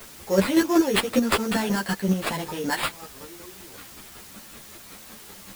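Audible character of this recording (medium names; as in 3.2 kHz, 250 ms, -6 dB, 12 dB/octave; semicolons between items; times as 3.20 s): aliases and images of a low sample rate 6.1 kHz, jitter 0%; chopped level 5.3 Hz, depth 60%, duty 25%; a quantiser's noise floor 8-bit, dither triangular; a shimmering, thickened sound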